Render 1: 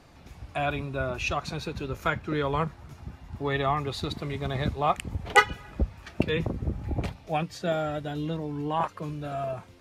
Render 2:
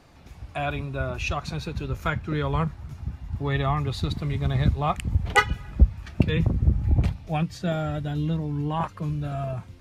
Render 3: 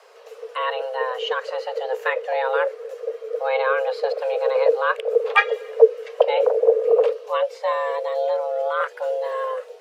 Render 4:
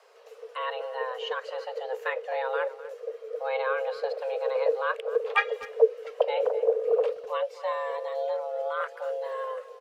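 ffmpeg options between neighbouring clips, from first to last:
-af "asubboost=boost=3.5:cutoff=210"
-filter_complex "[0:a]afreqshift=390,acrossover=split=3400[s0][s1];[s1]acompressor=threshold=0.002:ratio=4:attack=1:release=60[s2];[s0][s2]amix=inputs=2:normalize=0,volume=1.5"
-filter_complex "[0:a]asplit=2[s0][s1];[s1]adelay=250,highpass=300,lowpass=3400,asoftclip=type=hard:threshold=0.266,volume=0.158[s2];[s0][s2]amix=inputs=2:normalize=0,volume=0.422"

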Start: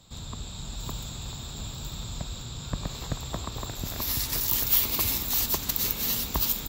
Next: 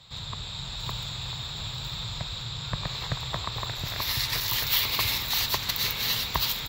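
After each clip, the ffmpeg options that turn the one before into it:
-af "equalizer=f=125:t=o:w=1:g=10,equalizer=f=250:t=o:w=1:g=-6,equalizer=f=500:t=o:w=1:g=4,equalizer=f=1000:t=o:w=1:g=7,equalizer=f=2000:t=o:w=1:g=11,equalizer=f=4000:t=o:w=1:g=12,equalizer=f=8000:t=o:w=1:g=-3,volume=0.531"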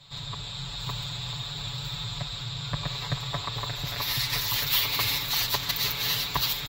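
-af "aecho=1:1:7:0.92,volume=0.75"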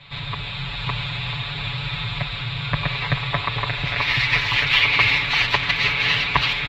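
-af "lowpass=f=2400:t=q:w=3.1,volume=2.37"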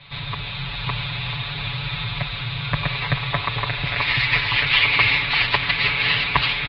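-af "aresample=11025,aresample=44100"

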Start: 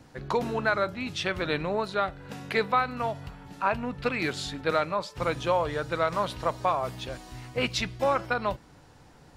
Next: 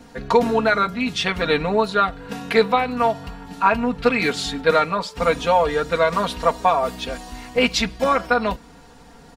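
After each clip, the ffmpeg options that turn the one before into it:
-af "aecho=1:1:4.3:0.92,volume=2"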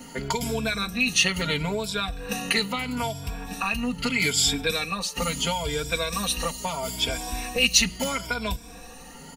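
-filter_complex "[0:a]afftfilt=real='re*pow(10,13/40*sin(2*PI*(1.7*log(max(b,1)*sr/1024/100)/log(2)-(0.76)*(pts-256)/sr)))':imag='im*pow(10,13/40*sin(2*PI*(1.7*log(max(b,1)*sr/1024/100)/log(2)-(0.76)*(pts-256)/sr)))':win_size=1024:overlap=0.75,acrossover=split=170|3000[s0][s1][s2];[s1]acompressor=threshold=0.0398:ratio=10[s3];[s0][s3][s2]amix=inputs=3:normalize=0,aexciter=amount=2:drive=3.6:freq=2200"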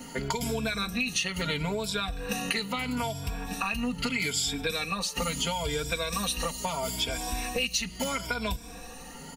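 -af "acompressor=threshold=0.0501:ratio=6"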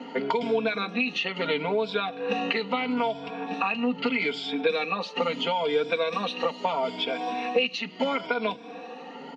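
-af "highpass=f=220:w=0.5412,highpass=f=220:w=1.3066,equalizer=f=270:t=q:w=4:g=3,equalizer=f=470:t=q:w=4:g=6,equalizer=f=790:t=q:w=4:g=5,equalizer=f=1700:t=q:w=4:g=-4,lowpass=f=3400:w=0.5412,lowpass=f=3400:w=1.3066,volume=1.5"

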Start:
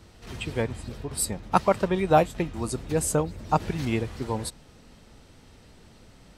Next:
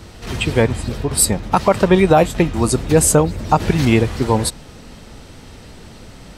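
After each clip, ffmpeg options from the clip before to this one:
-af "alimiter=level_in=5.31:limit=0.891:release=50:level=0:latency=1,volume=0.891"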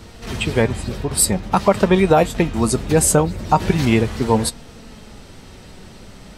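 -af "flanger=delay=4.3:depth=1.1:regen=70:speed=0.44:shape=sinusoidal,volume=1.41"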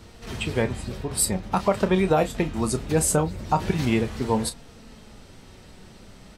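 -filter_complex "[0:a]asplit=2[s0][s1];[s1]adelay=32,volume=0.251[s2];[s0][s2]amix=inputs=2:normalize=0,volume=0.447"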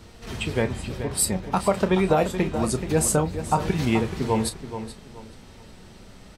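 -filter_complex "[0:a]asplit=2[s0][s1];[s1]adelay=428,lowpass=f=4000:p=1,volume=0.316,asplit=2[s2][s3];[s3]adelay=428,lowpass=f=4000:p=1,volume=0.3,asplit=2[s4][s5];[s5]adelay=428,lowpass=f=4000:p=1,volume=0.3[s6];[s0][s2][s4][s6]amix=inputs=4:normalize=0"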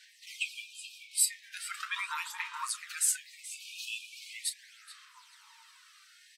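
-af "aphaser=in_gain=1:out_gain=1:delay=2.8:decay=0.44:speed=0.4:type=sinusoidal,afftfilt=real='re*gte(b*sr/1024,860*pow(2400/860,0.5+0.5*sin(2*PI*0.32*pts/sr)))':imag='im*gte(b*sr/1024,860*pow(2400/860,0.5+0.5*sin(2*PI*0.32*pts/sr)))':win_size=1024:overlap=0.75,volume=0.596"

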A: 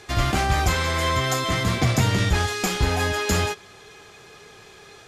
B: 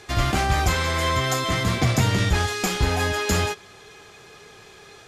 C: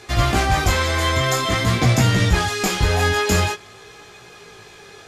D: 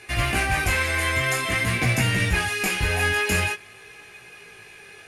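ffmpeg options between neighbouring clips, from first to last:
-af anull
-af "flanger=delay=16.5:depth=5.2:speed=0.48,volume=2.11"
-af "superequalizer=11b=2.24:12b=3.16:16b=3.55,acrusher=bits=9:mode=log:mix=0:aa=0.000001,volume=0.447"

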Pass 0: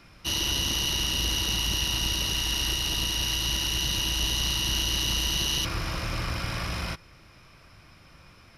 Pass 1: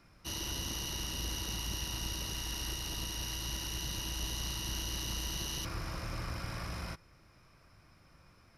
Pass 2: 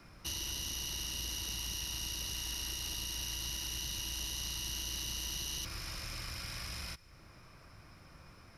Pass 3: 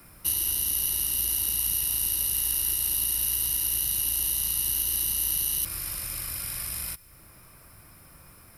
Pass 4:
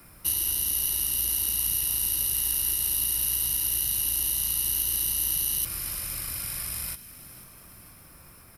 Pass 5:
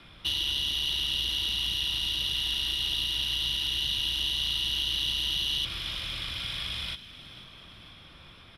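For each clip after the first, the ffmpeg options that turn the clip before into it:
-af "equalizer=f=3100:w=1.4:g=-7,volume=0.398"
-filter_complex "[0:a]acrossover=split=96|2200[s0][s1][s2];[s0]acompressor=threshold=0.00251:ratio=4[s3];[s1]acompressor=threshold=0.00126:ratio=4[s4];[s2]acompressor=threshold=0.00708:ratio=4[s5];[s3][s4][s5]amix=inputs=3:normalize=0,volume=1.88"
-af "aexciter=amount=9.4:drive=5.6:freq=8500,volume=1.33"
-filter_complex "[0:a]asplit=6[s0][s1][s2][s3][s4][s5];[s1]adelay=488,afreqshift=65,volume=0.158[s6];[s2]adelay=976,afreqshift=130,volume=0.0851[s7];[s3]adelay=1464,afreqshift=195,volume=0.0462[s8];[s4]adelay=1952,afreqshift=260,volume=0.0248[s9];[s5]adelay=2440,afreqshift=325,volume=0.0135[s10];[s0][s6][s7][s8][s9][s10]amix=inputs=6:normalize=0"
-af "lowpass=f=3400:t=q:w=15"

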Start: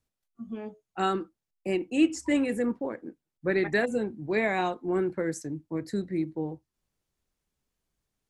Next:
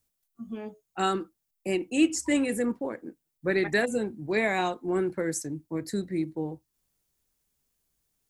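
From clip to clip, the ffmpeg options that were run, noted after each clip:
-af "aemphasis=mode=production:type=50kf"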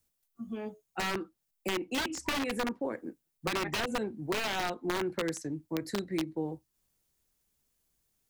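-filter_complex "[0:a]aeval=exprs='(mod(10.6*val(0)+1,2)-1)/10.6':c=same,acrossover=split=280|4900[s0][s1][s2];[s0]acompressor=threshold=0.0112:ratio=4[s3];[s1]acompressor=threshold=0.0316:ratio=4[s4];[s2]acompressor=threshold=0.00398:ratio=4[s5];[s3][s4][s5]amix=inputs=3:normalize=0"

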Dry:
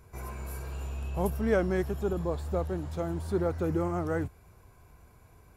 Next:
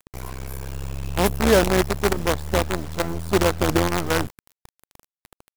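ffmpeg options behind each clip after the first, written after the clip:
-af "acrusher=bits=5:dc=4:mix=0:aa=0.000001,volume=2.66"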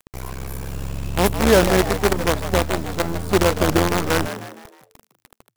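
-filter_complex "[0:a]asplit=5[s0][s1][s2][s3][s4];[s1]adelay=155,afreqshift=110,volume=0.282[s5];[s2]adelay=310,afreqshift=220,volume=0.119[s6];[s3]adelay=465,afreqshift=330,volume=0.0495[s7];[s4]adelay=620,afreqshift=440,volume=0.0209[s8];[s0][s5][s6][s7][s8]amix=inputs=5:normalize=0,volume=1.26"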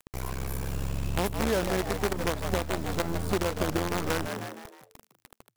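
-af "acompressor=threshold=0.0891:ratio=6,volume=0.75"

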